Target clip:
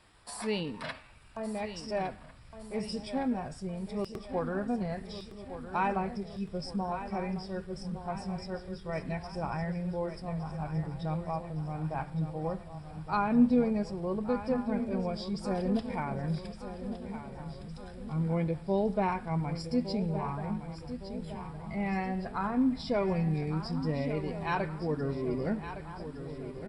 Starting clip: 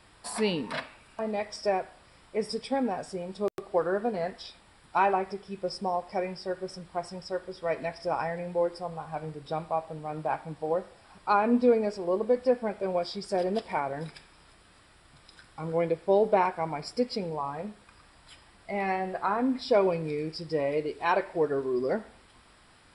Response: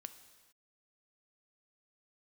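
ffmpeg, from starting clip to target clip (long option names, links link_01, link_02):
-filter_complex "[0:a]atempo=0.86,asplit=2[link_01][link_02];[link_02]adelay=1399,volume=-13dB,highshelf=frequency=4000:gain=-31.5[link_03];[link_01][link_03]amix=inputs=2:normalize=0,asubboost=boost=8:cutoff=160,asplit=2[link_04][link_05];[link_05]aecho=0:1:1162|2324|3486|4648|5810|6972:0.282|0.147|0.0762|0.0396|0.0206|0.0107[link_06];[link_04][link_06]amix=inputs=2:normalize=0,volume=-4.5dB"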